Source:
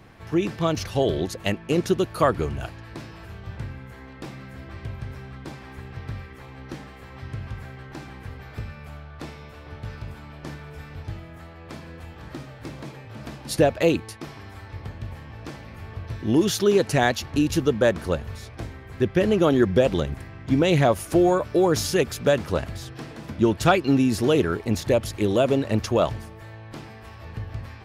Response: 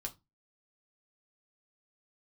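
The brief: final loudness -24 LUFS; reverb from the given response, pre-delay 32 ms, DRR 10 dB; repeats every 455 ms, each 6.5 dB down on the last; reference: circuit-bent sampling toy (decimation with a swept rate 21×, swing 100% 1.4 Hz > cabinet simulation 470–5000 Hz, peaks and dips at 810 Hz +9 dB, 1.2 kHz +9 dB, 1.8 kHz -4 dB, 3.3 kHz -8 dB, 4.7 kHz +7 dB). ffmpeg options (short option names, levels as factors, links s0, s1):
-filter_complex "[0:a]aecho=1:1:455|910|1365|1820|2275|2730:0.473|0.222|0.105|0.0491|0.0231|0.0109,asplit=2[s0][s1];[1:a]atrim=start_sample=2205,adelay=32[s2];[s1][s2]afir=irnorm=-1:irlink=0,volume=0.376[s3];[s0][s3]amix=inputs=2:normalize=0,acrusher=samples=21:mix=1:aa=0.000001:lfo=1:lforange=21:lforate=1.4,highpass=470,equalizer=f=810:t=q:w=4:g=9,equalizer=f=1200:t=q:w=4:g=9,equalizer=f=1800:t=q:w=4:g=-4,equalizer=f=3300:t=q:w=4:g=-8,equalizer=f=4700:t=q:w=4:g=7,lowpass=f=5000:w=0.5412,lowpass=f=5000:w=1.3066,volume=0.841"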